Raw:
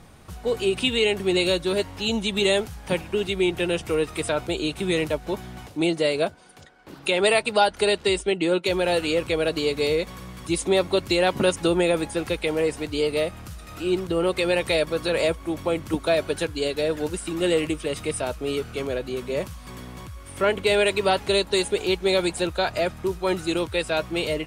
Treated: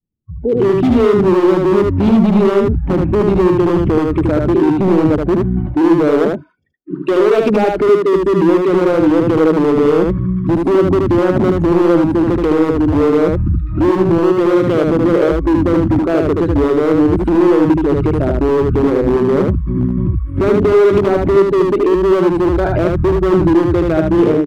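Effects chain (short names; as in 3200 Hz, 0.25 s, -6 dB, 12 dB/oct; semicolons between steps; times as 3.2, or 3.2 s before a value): formant sharpening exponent 1.5; Chebyshev low-pass 1300 Hz, order 2; expander -38 dBFS; resonant low shelf 500 Hz +13.5 dB, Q 1.5; in parallel at -2 dB: compressor 4:1, threshold -20 dBFS, peak gain reduction 13.5 dB; on the sum: limiter -9.5 dBFS, peak gain reduction 12 dB; AGC gain up to 16.5 dB; spectral noise reduction 30 dB; wavefolder -4 dBFS; on a send: echo 76 ms -3 dB; on the sum: gain -4 dB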